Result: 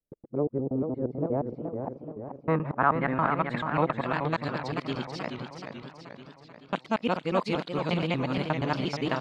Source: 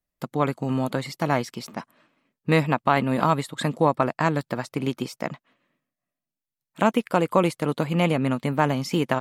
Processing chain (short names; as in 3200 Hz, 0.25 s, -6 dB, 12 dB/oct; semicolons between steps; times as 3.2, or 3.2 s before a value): local time reversal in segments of 0.118 s; low-pass sweep 440 Hz -> 4300 Hz, 1.14–4.42; warbling echo 0.432 s, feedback 57%, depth 145 cents, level -6.5 dB; gain -7 dB